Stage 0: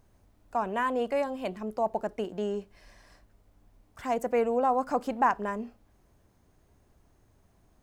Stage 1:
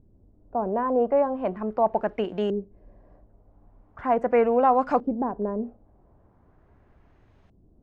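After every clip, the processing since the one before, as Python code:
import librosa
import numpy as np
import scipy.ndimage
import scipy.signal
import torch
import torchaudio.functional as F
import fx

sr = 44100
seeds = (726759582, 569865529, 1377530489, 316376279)

y = fx.filter_lfo_lowpass(x, sr, shape='saw_up', hz=0.4, low_hz=310.0, high_hz=3400.0, q=1.2)
y = y * librosa.db_to_amplitude(5.5)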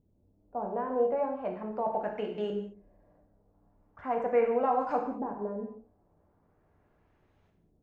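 y = fx.low_shelf(x, sr, hz=140.0, db=-6.0)
y = fx.rev_gated(y, sr, seeds[0], gate_ms=250, shape='falling', drr_db=1.0)
y = y * librosa.db_to_amplitude(-9.0)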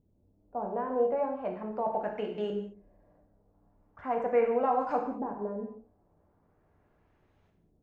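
y = x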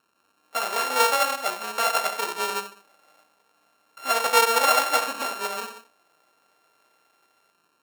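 y = np.r_[np.sort(x[:len(x) // 32 * 32].reshape(-1, 32), axis=1).ravel(), x[len(x) // 32 * 32:]]
y = scipy.signal.sosfilt(scipy.signal.butter(2, 600.0, 'highpass', fs=sr, output='sos'), y)
y = y * librosa.db_to_amplitude(8.5)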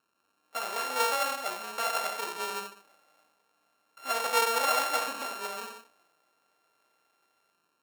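y = fx.transient(x, sr, attack_db=0, sustain_db=5)
y = y * librosa.db_to_amplitude(-7.5)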